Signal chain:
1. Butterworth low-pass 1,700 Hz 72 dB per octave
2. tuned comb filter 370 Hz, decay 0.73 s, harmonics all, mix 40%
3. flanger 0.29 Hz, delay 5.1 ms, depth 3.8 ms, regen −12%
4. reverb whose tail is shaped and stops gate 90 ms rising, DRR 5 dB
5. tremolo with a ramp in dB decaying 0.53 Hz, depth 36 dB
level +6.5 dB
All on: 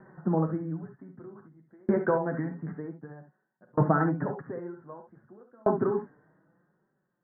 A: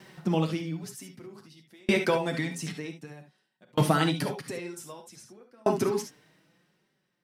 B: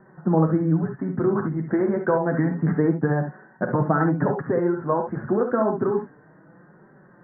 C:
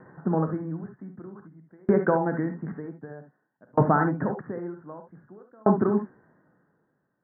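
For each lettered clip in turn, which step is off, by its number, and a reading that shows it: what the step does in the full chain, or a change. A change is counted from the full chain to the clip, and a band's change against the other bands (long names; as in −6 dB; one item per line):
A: 1, 2 kHz band +5.5 dB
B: 5, change in momentary loudness spread −16 LU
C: 3, 125 Hz band −1.5 dB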